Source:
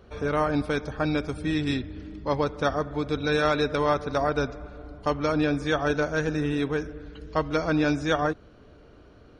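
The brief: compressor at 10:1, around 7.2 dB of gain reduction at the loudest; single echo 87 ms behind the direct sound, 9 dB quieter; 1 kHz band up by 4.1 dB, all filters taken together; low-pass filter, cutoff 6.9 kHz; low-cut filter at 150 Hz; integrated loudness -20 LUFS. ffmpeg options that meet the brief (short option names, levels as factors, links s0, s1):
-af "highpass=150,lowpass=6900,equalizer=f=1000:t=o:g=5.5,acompressor=threshold=0.0708:ratio=10,aecho=1:1:87:0.355,volume=2.82"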